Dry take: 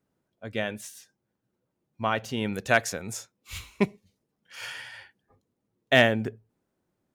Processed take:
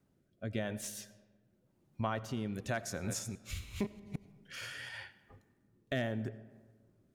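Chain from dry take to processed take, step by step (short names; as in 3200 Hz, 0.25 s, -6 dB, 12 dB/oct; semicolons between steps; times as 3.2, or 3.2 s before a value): 2.87–4.89 reverse delay 0.161 s, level -6.5 dB; low shelf 170 Hz +7 dB; notch 470 Hz, Q 12; dynamic EQ 2600 Hz, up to -6 dB, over -42 dBFS, Q 2; compressor 2.5:1, threshold -42 dBFS, peak gain reduction 17.5 dB; rotary speaker horn 0.9 Hz; digital reverb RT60 1.5 s, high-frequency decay 0.5×, pre-delay 45 ms, DRR 16 dB; gain +4.5 dB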